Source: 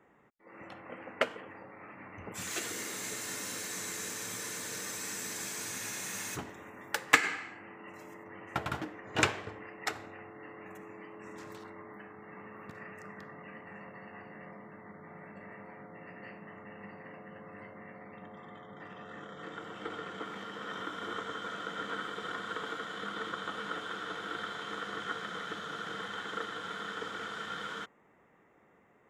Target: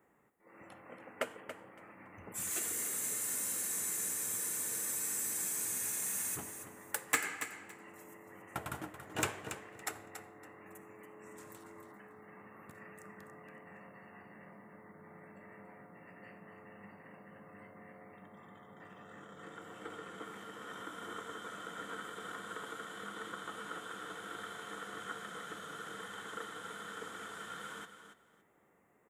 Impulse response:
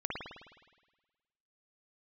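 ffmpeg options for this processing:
-filter_complex "[0:a]highshelf=f=6.9k:t=q:w=1.5:g=12.5,asoftclip=type=tanh:threshold=-13dB,asplit=2[a][b];[b]aecho=0:1:281|562|843:0.316|0.0601|0.0114[c];[a][c]amix=inputs=2:normalize=0,volume=-6dB"

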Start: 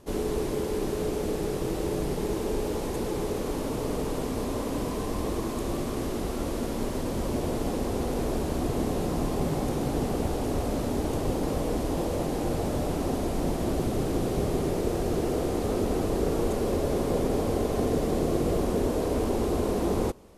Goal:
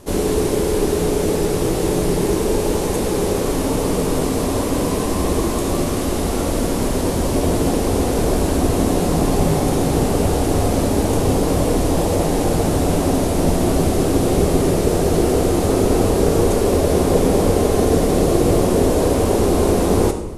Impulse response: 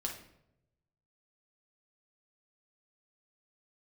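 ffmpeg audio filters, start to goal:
-filter_complex "[0:a]asplit=2[a][b];[1:a]atrim=start_sample=2205,asetrate=22932,aresample=44100,highshelf=f=5.7k:g=11[c];[b][c]afir=irnorm=-1:irlink=0,volume=-5.5dB[d];[a][d]amix=inputs=2:normalize=0,volume=5.5dB"

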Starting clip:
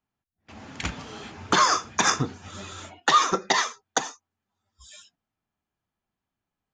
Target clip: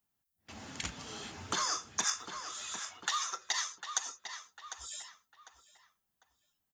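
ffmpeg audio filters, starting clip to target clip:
-filter_complex "[0:a]asettb=1/sr,asplit=3[a][b][c];[a]atrim=end=2.044[d];[b]atrim=start=2.04:end=4.06,asetpts=PTS-STARTPTS,afade=t=in:d=0.004:c=qsin,afade=t=out:st=2.016:d=0.004:c=qsin,highpass=1k[e];[c]atrim=start=4.056[f];[d][e]acrossfade=d=0.004:c1=hsin:c2=qsin[g];[g][f]acrossfade=d=0.004:c1=qsin:c2=hsin,asplit=2[h][i];[i]adelay=750,lowpass=f=3.7k:p=1,volume=-15.5dB,asplit=2[j][k];[k]adelay=750,lowpass=f=3.7k:p=1,volume=0.31,asplit=2[l][m];[m]adelay=750,lowpass=f=3.7k:p=1,volume=0.31[n];[h][j][l][n]amix=inputs=4:normalize=0,acompressor=threshold=-39dB:ratio=2,aemphasis=mode=production:type=75kf,bandreject=f=2.4k:w=21,volume=-5dB"

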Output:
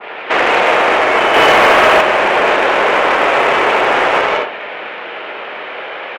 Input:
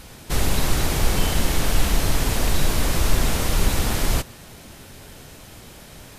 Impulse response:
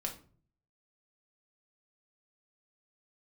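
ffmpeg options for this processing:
-filter_complex "[0:a]aecho=1:1:80:0.531,asplit=2[a][b];[1:a]atrim=start_sample=2205,highshelf=f=3.4k:g=8,adelay=150[c];[b][c]afir=irnorm=-1:irlink=0,volume=-5dB[d];[a][d]amix=inputs=2:normalize=0,acrusher=bits=6:mix=0:aa=0.000001,highpass=f=540:t=q:w=0.5412,highpass=f=540:t=q:w=1.307,lowpass=f=2.8k:t=q:w=0.5176,lowpass=f=2.8k:t=q:w=0.7071,lowpass=f=2.8k:t=q:w=1.932,afreqshift=-73,asettb=1/sr,asplit=3[e][f][g];[e]atrim=end=1.344[h];[f]atrim=start=1.34:end=2.01,asetpts=PTS-STARTPTS,afade=t=in:d=0.004:c=qsin,afade=t=out:st=0.666:d=0.004:c=qsin,acontrast=67[i];[g]atrim=start=2.006[j];[h][i]acrossfade=d=0.004:c1=hsin:c2=qsin[k];[k][j]acrossfade=d=0.004:c1=qsin:c2=hsin,asoftclip=type=tanh:threshold=-23.5dB,aeval=exprs='0.0668*(cos(1*acos(clip(val(0)/0.0668,-1,1)))-cos(1*PI/2))+0.0133*(cos(3*acos(clip(val(0)/0.0668,-1,1)))-cos(3*PI/2))':c=same,alimiter=level_in=29.5dB:limit=-1dB:release=50:level=0:latency=1,adynamicequalizer=threshold=0.141:dfrequency=1500:dqfactor=0.7:tfrequency=1500:tqfactor=0.7:attack=5:release=100:ratio=0.375:range=2:mode=cutabove:tftype=highshelf,volume=-1dB"

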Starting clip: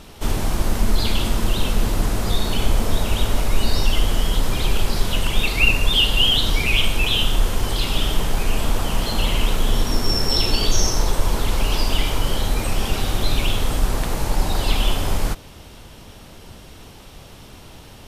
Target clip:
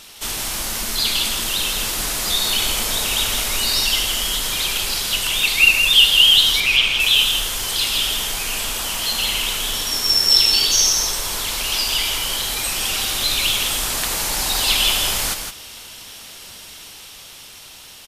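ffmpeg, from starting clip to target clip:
-filter_complex "[0:a]lowshelf=f=180:g=-7,asettb=1/sr,asplit=3[a][b][c];[a]atrim=end=6.604[d];[b]atrim=start=6.6:end=7,asetpts=PTS-STARTPTS,afade=t=in:d=0.004:c=qsin,afade=t=out:st=0.396:d=0.004:c=qsin,acrossover=split=5600[e][f];[f]acompressor=threshold=-50dB:ratio=4:attack=1:release=60[g];[e][g]amix=inputs=2:normalize=0[h];[c]atrim=start=6.996[i];[d][h]acrossfade=d=0.004:c1=hsin:c2=qsin[j];[j][i]acrossfade=d=0.004:c1=qsin:c2=hsin,tiltshelf=f=1.4k:g=-9.5,asplit=2[k][l];[l]aecho=0:1:164:0.473[m];[k][m]amix=inputs=2:normalize=0,dynaudnorm=f=830:g=5:m=4dB"

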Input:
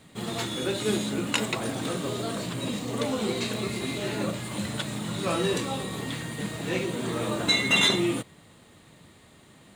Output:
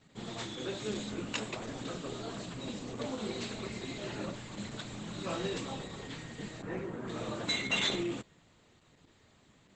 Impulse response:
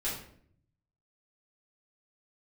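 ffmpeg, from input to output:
-filter_complex "[0:a]asettb=1/sr,asplit=3[a][b][c];[a]atrim=end=6.624[d];[b]atrim=start=6.62:end=7.08,asetpts=PTS-STARTPTS,afade=t=in:d=0.004:c=qsin,afade=t=out:st=0.456:d=0.004:c=qsin,highshelf=f=2.2k:t=q:w=1.5:g=-12[e];[c]atrim=start=7.076[f];[d][e]acrossfade=d=0.004:c1=hsin:c2=qsin[g];[g][f]acrossfade=d=0.004:c1=qsin:c2=hsin,volume=-9dB" -ar 48000 -c:a libopus -b:a 10k

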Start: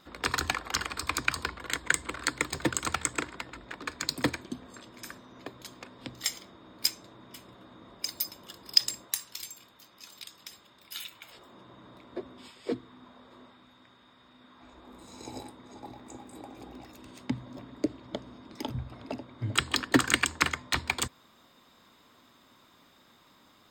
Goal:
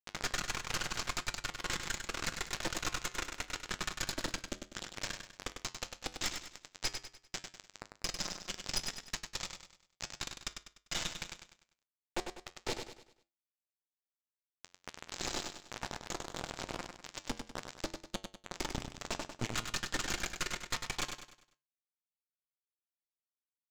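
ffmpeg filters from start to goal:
-filter_complex "[0:a]adynamicequalizer=threshold=0.00562:dfrequency=1500:dqfactor=1.8:tfrequency=1500:tqfactor=1.8:attack=5:release=100:ratio=0.375:range=2:mode=boostabove:tftype=bell,aecho=1:1:5.6:0.52,acrossover=split=2500|6000[a][b][c];[a]acompressor=threshold=-45dB:ratio=4[d];[b]acompressor=threshold=-48dB:ratio=4[e];[c]acompressor=threshold=-48dB:ratio=4[f];[d][e][f]amix=inputs=3:normalize=0,aresample=16000,acrusher=bits=4:dc=4:mix=0:aa=0.000001,aresample=44100,asoftclip=type=hard:threshold=-36.5dB,flanger=delay=9.5:depth=2.7:regen=-76:speed=0.77:shape=triangular,asplit=2[g][h];[h]aecho=0:1:99|198|297|396|495:0.447|0.179|0.0715|0.0286|0.0114[i];[g][i]amix=inputs=2:normalize=0,volume=15.5dB"

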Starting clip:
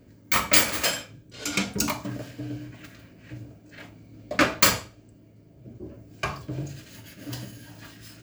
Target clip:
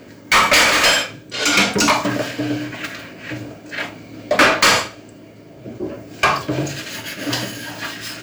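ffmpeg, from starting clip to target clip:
-filter_complex "[0:a]acrossover=split=8400[a][b];[b]acompressor=threshold=-44dB:ratio=4:attack=1:release=60[c];[a][c]amix=inputs=2:normalize=0,asplit=2[d][e];[e]highpass=f=720:p=1,volume=28dB,asoftclip=type=tanh:threshold=-3dB[f];[d][f]amix=inputs=2:normalize=0,lowpass=f=4.3k:p=1,volume=-6dB"

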